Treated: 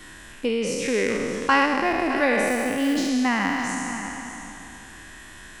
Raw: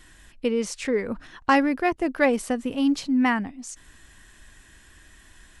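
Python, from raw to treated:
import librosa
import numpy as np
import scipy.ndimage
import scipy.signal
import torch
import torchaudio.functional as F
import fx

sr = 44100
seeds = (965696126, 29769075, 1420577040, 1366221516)

y = fx.spec_trails(x, sr, decay_s=2.27)
y = fx.dynamic_eq(y, sr, hz=2300.0, q=0.71, threshold_db=-31.0, ratio=4.0, max_db=6, at=(0.92, 1.66))
y = fx.quant_companded(y, sr, bits=6, at=(2.47, 3.09))
y = y + 10.0 ** (-15.0 / 20.0) * np.pad(y, (int(611 * sr / 1000.0), 0))[:len(y)]
y = fx.band_squash(y, sr, depth_pct=40)
y = y * librosa.db_to_amplitude(-3.0)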